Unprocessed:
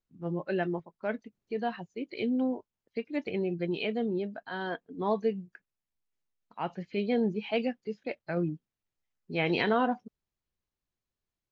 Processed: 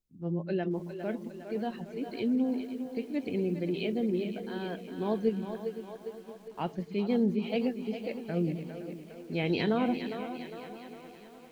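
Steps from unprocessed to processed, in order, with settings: bell 140 Hz -3 dB 0.31 oct; on a send: split-band echo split 310 Hz, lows 0.129 s, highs 0.406 s, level -9 dB; 5.27–6.9 on the sum: transient shaper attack +7 dB, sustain +2 dB; bell 1300 Hz -12 dB 2.7 oct; lo-fi delay 0.514 s, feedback 55%, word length 9-bit, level -13.5 dB; gain +3.5 dB

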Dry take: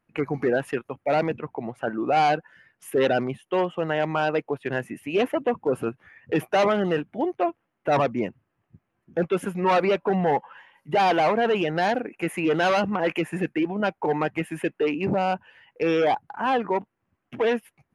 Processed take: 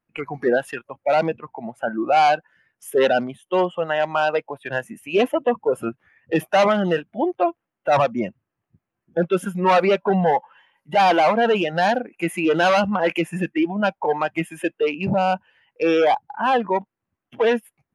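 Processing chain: spectral noise reduction 11 dB; gain +4.5 dB

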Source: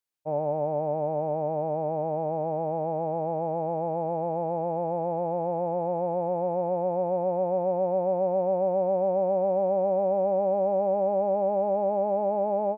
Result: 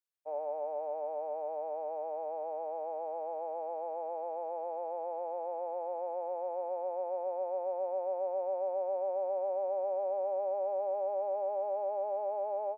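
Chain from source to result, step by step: inverse Chebyshev high-pass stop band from 170 Hz, stop band 50 dB; gain -8 dB

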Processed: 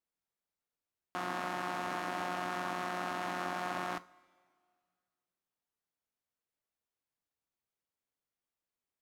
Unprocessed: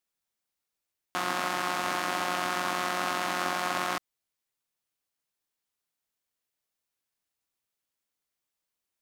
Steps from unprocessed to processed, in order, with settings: high shelf 2100 Hz -10 dB; in parallel at +1 dB: limiter -24.5 dBFS, peak gain reduction 8.5 dB; on the sum: two-slope reverb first 0.29 s, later 2.1 s, from -18 dB, DRR 13 dB; gain -9 dB

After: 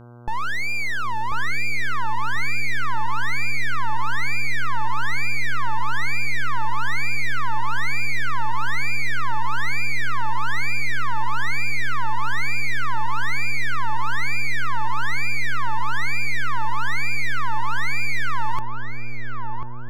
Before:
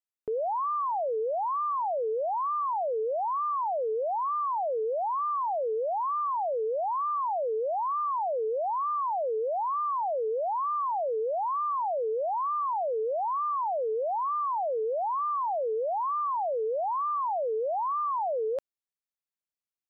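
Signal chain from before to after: full-wave rectifier; buzz 120 Hz, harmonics 13, -52 dBFS -6 dB/oct; darkening echo 1.041 s, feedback 47%, low-pass 1200 Hz, level -4 dB; gain +8.5 dB

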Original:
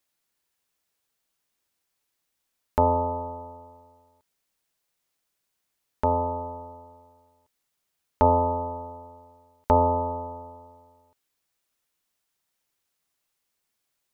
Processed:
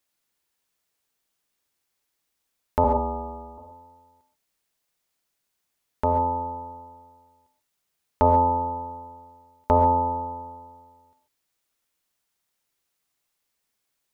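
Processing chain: 2.84–3.58 frequency shift -20 Hz; non-linear reverb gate 0.16 s rising, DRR 7 dB

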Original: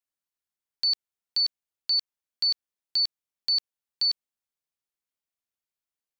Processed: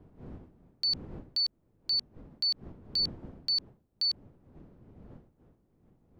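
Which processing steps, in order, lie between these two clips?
wind noise 250 Hz -46 dBFS; gain -4.5 dB

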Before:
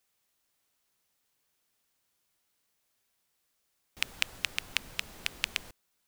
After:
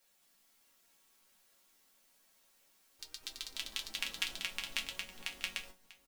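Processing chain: added noise white -66 dBFS; resonator bank F#3 major, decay 0.22 s; on a send: echo 0.643 s -17.5 dB; on the sum: echoes that change speed 0.211 s, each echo +3 st, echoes 3; gain +8.5 dB

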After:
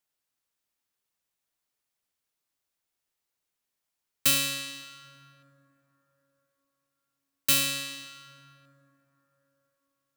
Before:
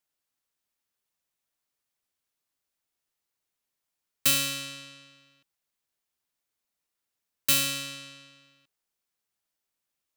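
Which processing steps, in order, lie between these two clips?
plate-style reverb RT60 4.3 s, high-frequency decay 0.35×, DRR 13.5 dB

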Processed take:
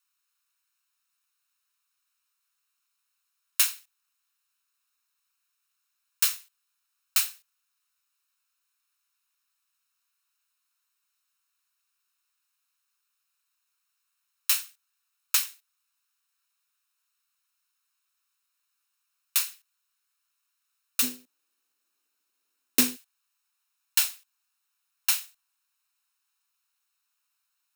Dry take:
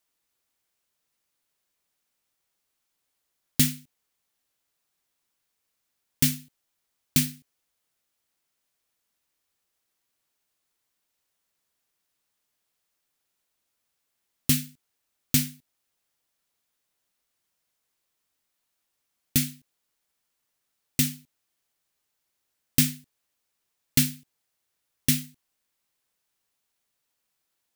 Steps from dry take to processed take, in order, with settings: minimum comb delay 0.75 ms; steep high-pass 950 Hz 36 dB/oct, from 21.02 s 240 Hz, from 22.95 s 810 Hz; gain +2 dB

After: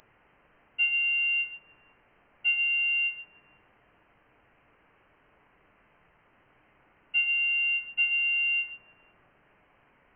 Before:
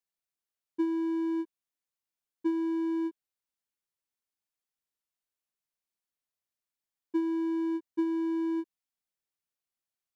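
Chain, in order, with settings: added noise blue -48 dBFS; reverb RT60 0.65 s, pre-delay 7 ms, DRR 6 dB; inverted band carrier 3100 Hz

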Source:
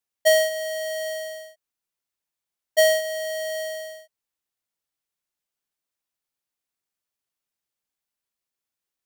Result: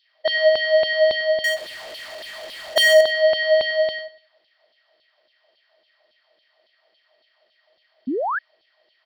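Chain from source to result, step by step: per-bin compression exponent 0.6; limiter -21 dBFS, peak gain reduction 7.5 dB; LFO high-pass saw down 3.6 Hz 280–3800 Hz; downsampling 11025 Hz; 1.44–3.01 power-law curve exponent 0.5; feedback echo 97 ms, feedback 33%, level -17 dB; 8.07–8.39 painted sound rise 230–1800 Hz -26 dBFS; gain +3 dB

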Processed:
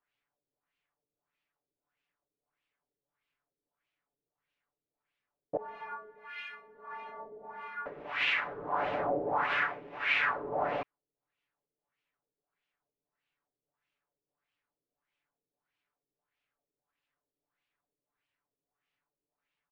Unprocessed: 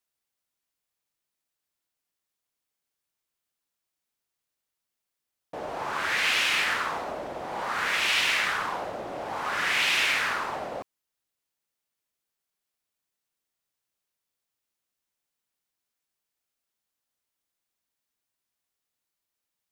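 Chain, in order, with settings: compressor, threshold -28 dBFS, peak gain reduction 7.5 dB; limiter -26 dBFS, peak gain reduction 7 dB; comb 6.9 ms, depth 60%; LFO low-pass sine 1.6 Hz 400–2800 Hz; 5.57–7.86 metallic resonator 210 Hz, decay 0.38 s, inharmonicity 0.008

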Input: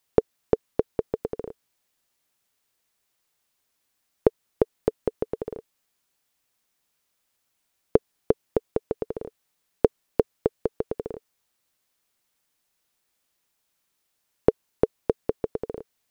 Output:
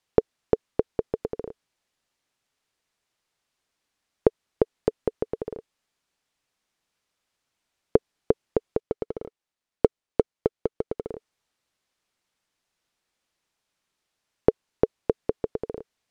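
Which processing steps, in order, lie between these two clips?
8.8–11.09 G.711 law mismatch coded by A; air absorption 55 m

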